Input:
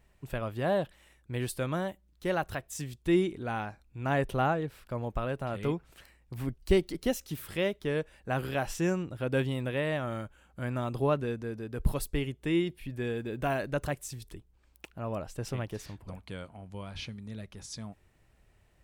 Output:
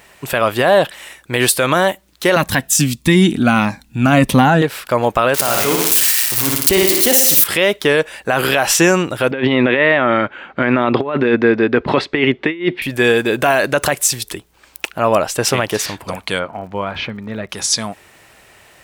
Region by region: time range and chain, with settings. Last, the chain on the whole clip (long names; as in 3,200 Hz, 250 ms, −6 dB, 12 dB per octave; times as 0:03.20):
0:02.36–0:04.62: low shelf with overshoot 310 Hz +7 dB, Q 3 + phaser whose notches keep moving one way falling 1.6 Hz
0:05.34–0:07.44: spike at every zero crossing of −26 dBFS + flutter between parallel walls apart 10 metres, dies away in 0.8 s
0:09.31–0:12.82: loudspeaker in its box 100–3,500 Hz, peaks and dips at 250 Hz +6 dB, 370 Hz +5 dB, 2,000 Hz +5 dB, 3,000 Hz −3 dB + compressor whose output falls as the input rises −31 dBFS, ratio −0.5
0:16.38–0:17.48: low-pass filter 1,700 Hz + surface crackle 110 per second −68 dBFS
whole clip: high-pass filter 820 Hz 6 dB per octave; boost into a limiter +28.5 dB; level −1 dB